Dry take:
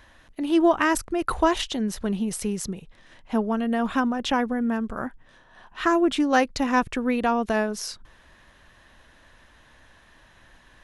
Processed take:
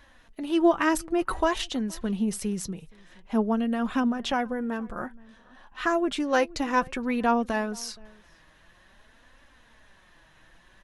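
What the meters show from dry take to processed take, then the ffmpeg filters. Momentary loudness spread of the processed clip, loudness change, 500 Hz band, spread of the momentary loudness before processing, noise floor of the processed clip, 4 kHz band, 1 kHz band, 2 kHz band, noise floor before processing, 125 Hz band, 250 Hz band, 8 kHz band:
12 LU, -2.5 dB, -2.0 dB, 12 LU, -58 dBFS, -3.0 dB, -3.0 dB, -3.0 dB, -56 dBFS, -2.0 dB, -2.5 dB, -3.0 dB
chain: -filter_complex "[0:a]asplit=2[s0][s1];[s1]adelay=472.3,volume=0.0562,highshelf=f=4000:g=-10.6[s2];[s0][s2]amix=inputs=2:normalize=0,flanger=delay=3.5:depth=3:regen=45:speed=0.53:shape=triangular,volume=1.12"

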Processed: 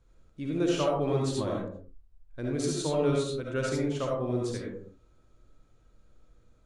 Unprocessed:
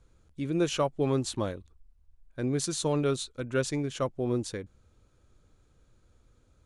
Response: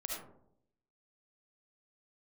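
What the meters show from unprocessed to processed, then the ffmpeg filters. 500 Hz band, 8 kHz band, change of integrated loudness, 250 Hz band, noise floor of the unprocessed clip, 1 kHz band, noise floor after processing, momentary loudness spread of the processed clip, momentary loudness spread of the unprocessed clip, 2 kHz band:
+1.5 dB, -3.5 dB, +0.5 dB, +0.5 dB, -65 dBFS, +0.5 dB, -62 dBFS, 12 LU, 13 LU, -0.5 dB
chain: -filter_complex "[0:a]highshelf=f=8200:g=-7[s0];[1:a]atrim=start_sample=2205,afade=t=out:st=0.41:d=0.01,atrim=end_sample=18522[s1];[s0][s1]afir=irnorm=-1:irlink=0"

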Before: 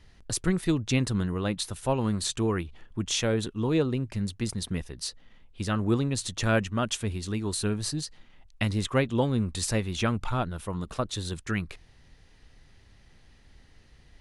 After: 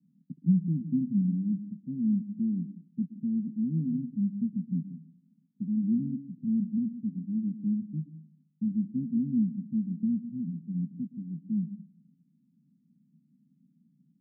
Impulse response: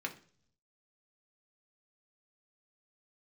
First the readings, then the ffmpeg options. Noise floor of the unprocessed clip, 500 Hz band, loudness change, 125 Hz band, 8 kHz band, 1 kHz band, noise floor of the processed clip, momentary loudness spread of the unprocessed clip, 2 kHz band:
-56 dBFS, under -25 dB, -2.0 dB, -5.0 dB, under -40 dB, under -40 dB, -69 dBFS, 8 LU, under -40 dB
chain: -filter_complex "[0:a]asuperpass=centerf=200:order=8:qfactor=1.9,asplit=2[s0][s1];[1:a]atrim=start_sample=2205,adelay=120[s2];[s1][s2]afir=irnorm=-1:irlink=0,volume=0.211[s3];[s0][s3]amix=inputs=2:normalize=0,volume=1.58"

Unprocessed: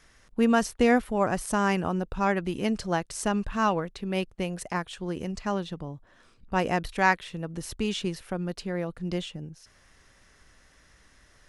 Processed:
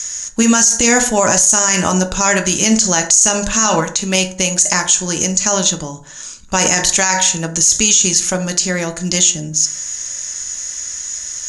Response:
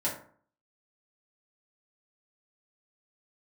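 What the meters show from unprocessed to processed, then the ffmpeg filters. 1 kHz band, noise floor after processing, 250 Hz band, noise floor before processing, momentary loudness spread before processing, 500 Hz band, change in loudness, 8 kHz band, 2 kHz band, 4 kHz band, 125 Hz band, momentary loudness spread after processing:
+8.5 dB, -32 dBFS, +9.0 dB, -60 dBFS, 13 LU, +9.0 dB, +15.0 dB, +32.5 dB, +12.0 dB, +20.5 dB, +10.0 dB, 12 LU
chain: -filter_complex "[0:a]lowpass=f=6700:t=q:w=16,crystalizer=i=8:c=0,asplit=2[s0][s1];[1:a]atrim=start_sample=2205[s2];[s1][s2]afir=irnorm=-1:irlink=0,volume=0.355[s3];[s0][s3]amix=inputs=2:normalize=0,alimiter=level_in=2.51:limit=0.891:release=50:level=0:latency=1,volume=0.891"

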